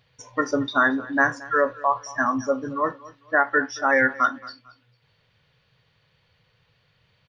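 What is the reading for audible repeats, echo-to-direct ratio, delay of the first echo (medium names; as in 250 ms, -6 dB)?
2, -19.5 dB, 224 ms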